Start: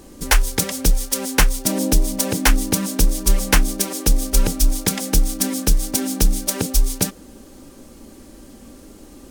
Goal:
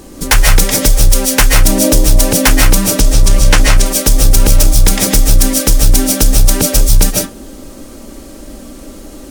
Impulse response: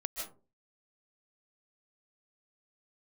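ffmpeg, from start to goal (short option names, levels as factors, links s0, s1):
-filter_complex "[1:a]atrim=start_sample=2205,afade=t=out:st=0.25:d=0.01,atrim=end_sample=11466[s0];[0:a][s0]afir=irnorm=-1:irlink=0,asettb=1/sr,asplit=3[s1][s2][s3];[s1]atrim=end=3.004[s4];[s2]atrim=start=3:end=3.86,asetpts=PTS-STARTPTS,afade=t=in:d=0.004:c=qsin,afade=t=out:st=0.856:d=0.004:c=qsin,acrossover=split=9100[s5][s6];[s6]acompressor=threshold=0.0126:ratio=4:attack=1:release=60[s7];[s5][s7]amix=inputs=2:normalize=0[s8];[s3]atrim=start=3.856[s9];[s4][s8]acrossfade=d=0.004:c1=hsin:c2=qsin[s10];[s10][s9]acrossfade=d=0.004:c1=qsin:c2=hsin,apsyclip=3.98,volume=0.794"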